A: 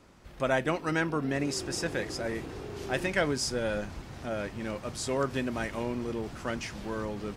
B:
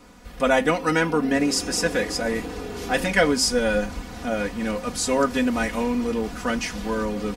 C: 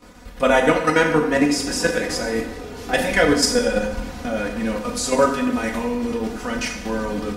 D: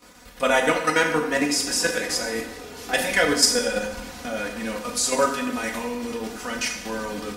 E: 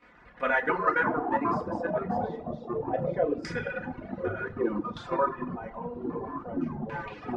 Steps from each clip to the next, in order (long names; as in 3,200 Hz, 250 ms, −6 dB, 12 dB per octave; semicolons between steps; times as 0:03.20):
high-shelf EQ 8,600 Hz +5 dB; comb filter 4.1 ms, depth 92%; hum removal 266.4 Hz, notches 38; level +6 dB
output level in coarse steps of 10 dB; dense smooth reverb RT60 0.97 s, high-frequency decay 0.8×, DRR 2 dB; level +4 dB
spectral tilt +2 dB per octave; level −3 dB
auto-filter low-pass saw down 0.29 Hz 570–2,100 Hz; delay with pitch and tempo change per echo 90 ms, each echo −6 semitones, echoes 3; reverb reduction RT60 1.4 s; level −8.5 dB